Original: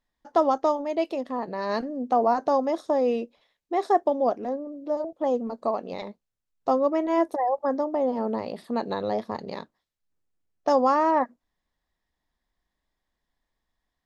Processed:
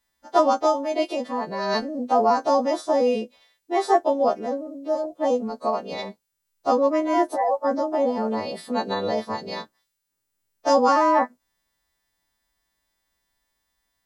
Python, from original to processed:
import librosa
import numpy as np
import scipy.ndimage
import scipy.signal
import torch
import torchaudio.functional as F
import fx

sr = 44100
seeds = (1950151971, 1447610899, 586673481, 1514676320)

y = fx.freq_snap(x, sr, grid_st=2)
y = F.gain(torch.from_numpy(y), 3.0).numpy()